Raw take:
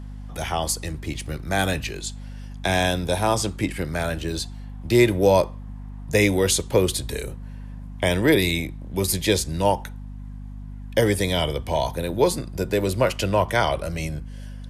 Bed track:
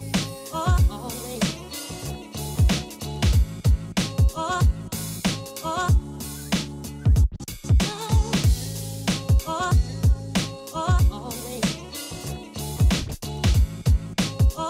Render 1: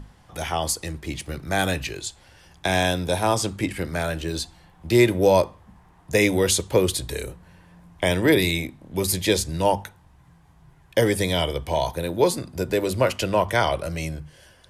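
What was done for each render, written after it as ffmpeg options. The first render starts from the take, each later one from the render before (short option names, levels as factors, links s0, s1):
-af "bandreject=f=50:t=h:w=6,bandreject=f=100:t=h:w=6,bandreject=f=150:t=h:w=6,bandreject=f=200:t=h:w=6,bandreject=f=250:t=h:w=6"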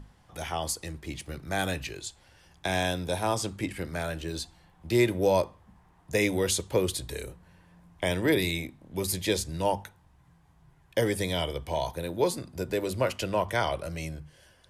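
-af "volume=0.473"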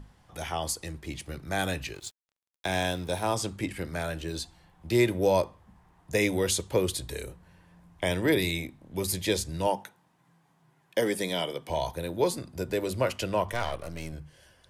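-filter_complex "[0:a]asettb=1/sr,asplit=3[s0][s1][s2];[s0]atrim=end=1.944[s3];[s1]atrim=start=1.94:end=3.34,asetpts=PTS-STARTPTS,afade=t=in:d=0.004:c=qsin,afade=t=out:st=1.396:d=0.004:c=qsin,aeval=exprs='sgn(val(0))*max(abs(val(0))-0.00398,0)':c=same[s4];[s2]atrim=start=3.336[s5];[s3][s4]acrossfade=d=0.004:c1=hsin:c2=qsin[s6];[s6][s5]acrossfade=d=0.004:c1=qsin:c2=hsin,asettb=1/sr,asplit=3[s7][s8][s9];[s7]atrim=end=9.674[s10];[s8]atrim=start=9.67:end=11.7,asetpts=PTS-STARTPTS,afade=t=in:d=0.004:c=qsin,afade=t=out:st=2.026:d=0.004:c=qsin,highpass=f=160:w=0.5412,highpass=f=160:w=1.3066[s11];[s9]atrim=start=11.696[s12];[s10][s11]acrossfade=d=0.004:c1=hsin:c2=qsin[s13];[s13][s12]acrossfade=d=0.004:c1=qsin:c2=hsin,asettb=1/sr,asplit=3[s14][s15][s16];[s14]atrim=end=13.524[s17];[s15]atrim=start=13.52:end=14.13,asetpts=PTS-STARTPTS,afade=t=in:d=0.004:c=qsin,afade=t=out:st=0.606:d=0.004:c=qsin,aeval=exprs='if(lt(val(0),0),0.251*val(0),val(0))':c=same[s18];[s16]atrim=start=14.126[s19];[s17][s18]acrossfade=d=0.004:c1=hsin:c2=qsin[s20];[s20][s19]acrossfade=d=0.004:c1=qsin:c2=hsin"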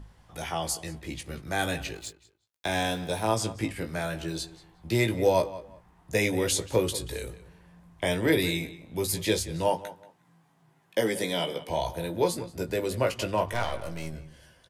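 -filter_complex "[0:a]asplit=2[s0][s1];[s1]adelay=18,volume=0.473[s2];[s0][s2]amix=inputs=2:normalize=0,asplit=2[s3][s4];[s4]adelay=182,lowpass=f=3500:p=1,volume=0.168,asplit=2[s5][s6];[s6]adelay=182,lowpass=f=3500:p=1,volume=0.24[s7];[s3][s5][s7]amix=inputs=3:normalize=0"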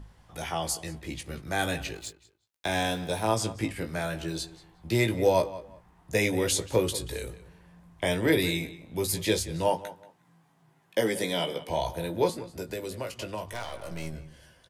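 -filter_complex "[0:a]asettb=1/sr,asplit=3[s0][s1][s2];[s0]atrim=end=12.294[s3];[s1]atrim=start=12.29:end=13.91,asetpts=PTS-STARTPTS,afade=t=in:d=0.004:c=qsin,afade=t=out:st=1.616:d=0.004:c=qsin,acrossover=split=260|3600[s4][s5][s6];[s4]acompressor=threshold=0.00708:ratio=4[s7];[s5]acompressor=threshold=0.0178:ratio=4[s8];[s6]acompressor=threshold=0.00708:ratio=4[s9];[s7][s8][s9]amix=inputs=3:normalize=0[s10];[s2]atrim=start=13.906[s11];[s3][s10]acrossfade=d=0.004:c1=hsin:c2=qsin[s12];[s12][s11]acrossfade=d=0.004:c1=qsin:c2=hsin"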